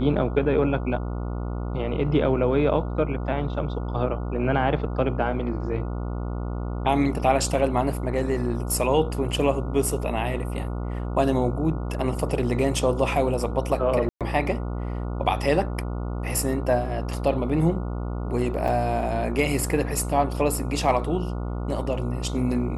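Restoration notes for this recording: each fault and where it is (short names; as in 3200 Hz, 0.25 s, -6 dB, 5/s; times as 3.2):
buzz 60 Hz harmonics 24 -29 dBFS
14.09–14.21 gap 0.117 s
18.68 gap 4.4 ms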